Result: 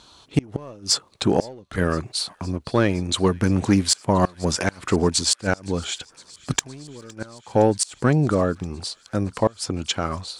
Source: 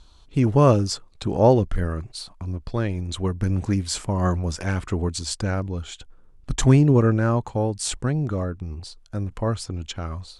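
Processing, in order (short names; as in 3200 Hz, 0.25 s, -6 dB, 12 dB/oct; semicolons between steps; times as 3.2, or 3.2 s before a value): HPF 94 Hz 12 dB/oct; low shelf 130 Hz -11 dB; in parallel at -4.5 dB: hard clip -20.5 dBFS, distortion -6 dB; on the sum: flipped gate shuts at -11 dBFS, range -29 dB; thin delay 0.513 s, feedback 81%, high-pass 2000 Hz, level -23 dB; gain +5.5 dB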